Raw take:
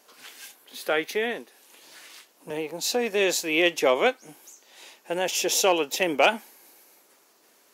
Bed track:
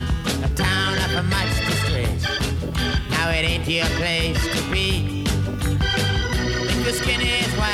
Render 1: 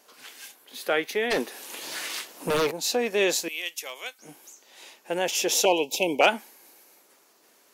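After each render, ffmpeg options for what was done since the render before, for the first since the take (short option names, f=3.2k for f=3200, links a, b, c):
-filter_complex "[0:a]asplit=3[a][b][c];[a]afade=t=out:st=1.3:d=0.02[d];[b]aeval=exprs='0.112*sin(PI/2*3.16*val(0)/0.112)':c=same,afade=t=in:st=1.3:d=0.02,afade=t=out:st=2.7:d=0.02[e];[c]afade=t=in:st=2.7:d=0.02[f];[d][e][f]amix=inputs=3:normalize=0,asettb=1/sr,asplit=3[g][h][i];[g]atrim=end=3.484[j];[h]atrim=start=3.48:end=4.19,asetpts=PTS-STARTPTS,afade=t=in:d=0.004:c=qsin,afade=t=out:st=0.706:d=0.004:c=qsin,aderivative[k];[i]atrim=start=4.186[l];[j][k]acrossfade=d=0.004:c1=hsin:c2=qsin[m];[m][l]acrossfade=d=0.004:c1=qsin:c2=hsin,asettb=1/sr,asplit=3[n][o][p];[n]atrim=end=5.654[q];[o]atrim=start=5.65:end=6.21,asetpts=PTS-STARTPTS,afade=t=in:d=0.004:c=qsin,afade=t=out:st=0.556:d=0.004:c=qsin,asuperstop=centerf=1500:order=20:qfactor=1.3[r];[p]atrim=start=6.206[s];[q][r]acrossfade=d=0.004:c1=hsin:c2=qsin[t];[t][s]acrossfade=d=0.004:c1=qsin:c2=hsin"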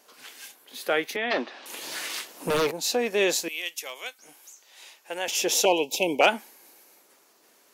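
-filter_complex "[0:a]asettb=1/sr,asplit=3[a][b][c];[a]atrim=end=1.164[d];[b]atrim=start=1.16:end=1.66,asetpts=PTS-STARTPTS,afade=t=in:d=0.004:c=qsin,afade=t=out:st=0.496:d=0.004:c=qsin,highpass=f=210:w=0.5412,highpass=f=210:w=1.3066,equalizer=f=440:t=q:w=4:g=-9,equalizer=f=630:t=q:w=4:g=5,equalizer=f=1.2k:t=q:w=4:g=5,lowpass=f=4.4k:w=0.5412,lowpass=f=4.4k:w=1.3066[e];[c]atrim=start=1.656[f];[d][e]acrossfade=d=0.004:c1=hsin:c2=qsin[g];[g][f]acrossfade=d=0.004:c1=qsin:c2=hsin,asettb=1/sr,asplit=3[h][i][j];[h]atrim=end=4.214[k];[i]atrim=start=4.21:end=5.28,asetpts=PTS-STARTPTS,afade=t=in:d=0.004:c=qsin,afade=t=out:st=1.066:d=0.004:c=qsin,highpass=f=930:p=1[l];[j]atrim=start=5.276[m];[k][l]acrossfade=d=0.004:c1=hsin:c2=qsin[n];[n][m]acrossfade=d=0.004:c1=qsin:c2=hsin"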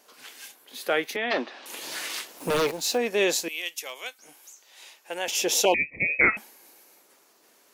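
-filter_complex "[0:a]asettb=1/sr,asplit=3[a][b][c];[a]atrim=end=2.384[d];[b]atrim=start=2.38:end=2.98,asetpts=PTS-STARTPTS,afade=t=in:d=0.004:c=qsin,afade=t=out:st=0.596:d=0.004:c=qsin,acrusher=bits=6:mix=0:aa=0.5[e];[c]atrim=start=2.976[f];[d][e]acrossfade=d=0.004:c1=hsin:c2=qsin[g];[g][f]acrossfade=d=0.004:c1=qsin:c2=hsin,asettb=1/sr,asplit=3[h][i][j];[h]atrim=end=5.744[k];[i]atrim=start=5.74:end=6.37,asetpts=PTS-STARTPTS,afade=t=in:d=0.004:c=qsin,afade=t=out:st=0.626:d=0.004:c=qsin,lowpass=f=2.4k:t=q:w=0.5098,lowpass=f=2.4k:t=q:w=0.6013,lowpass=f=2.4k:t=q:w=0.9,lowpass=f=2.4k:t=q:w=2.563,afreqshift=-2800[l];[j]atrim=start=6.366[m];[k][l]acrossfade=d=0.004:c1=hsin:c2=qsin[n];[n][m]acrossfade=d=0.004:c1=qsin:c2=hsin"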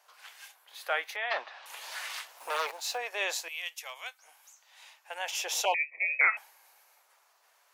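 -af "highpass=f=730:w=0.5412,highpass=f=730:w=1.3066,highshelf=f=2.6k:g=-9.5"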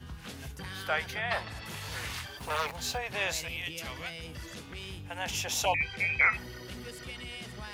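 -filter_complex "[1:a]volume=-21.5dB[a];[0:a][a]amix=inputs=2:normalize=0"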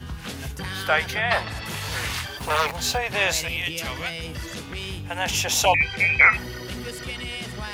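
-af "volume=9.5dB"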